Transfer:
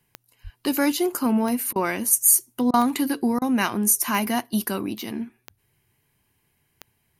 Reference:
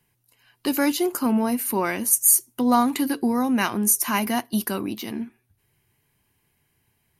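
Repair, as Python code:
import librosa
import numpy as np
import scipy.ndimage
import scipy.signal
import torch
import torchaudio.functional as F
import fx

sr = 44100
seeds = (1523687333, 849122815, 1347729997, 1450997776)

y = fx.fix_declick_ar(x, sr, threshold=10.0)
y = fx.fix_deplosive(y, sr, at_s=(0.43,))
y = fx.fix_interpolate(y, sr, at_s=(1.73, 2.71, 3.39), length_ms=26.0)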